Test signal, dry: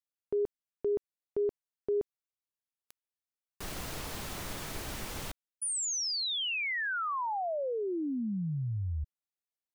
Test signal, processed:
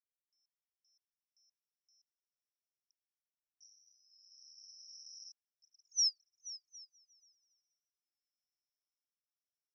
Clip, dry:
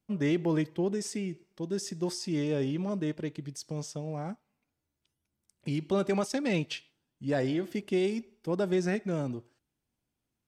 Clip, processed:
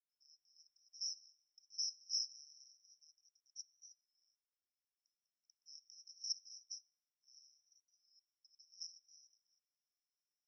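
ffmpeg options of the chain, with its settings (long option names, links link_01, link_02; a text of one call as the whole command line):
ffmpeg -i in.wav -filter_complex "[0:a]aeval=exprs='clip(val(0),-1,0.0158)':channel_layout=same,asuperpass=centerf=5500:order=12:qfactor=7.3,asplit=2[link_01][link_02];[link_02]afreqshift=0.25[link_03];[link_01][link_03]amix=inputs=2:normalize=1,volume=6.5dB" out.wav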